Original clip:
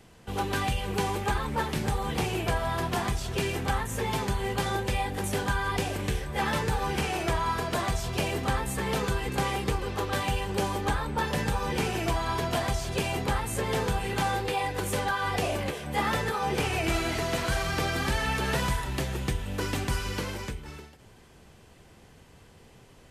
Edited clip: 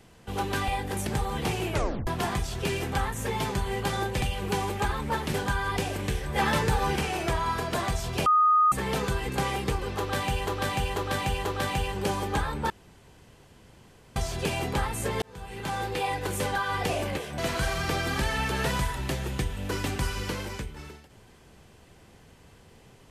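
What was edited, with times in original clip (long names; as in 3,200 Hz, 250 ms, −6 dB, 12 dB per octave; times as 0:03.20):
0:00.68–0:01.80: swap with 0:04.95–0:05.34
0:02.45: tape stop 0.35 s
0:06.24–0:06.96: clip gain +3 dB
0:08.26–0:08.72: beep over 1,240 Hz −17 dBFS
0:09.98–0:10.47: repeat, 4 plays
0:11.23–0:12.69: fill with room tone
0:13.75–0:14.55: fade in
0:15.91–0:17.27: remove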